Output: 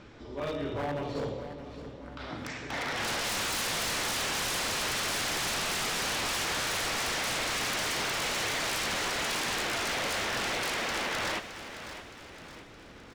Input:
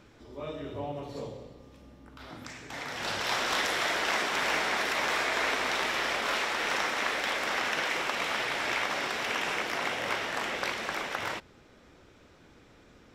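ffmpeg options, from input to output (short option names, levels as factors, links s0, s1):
-af "lowpass=5600,aeval=exprs='0.0237*(abs(mod(val(0)/0.0237+3,4)-2)-1)':c=same,aecho=1:1:617|1234|1851|2468|3085:0.251|0.121|0.0579|0.0278|0.0133,volume=1.88"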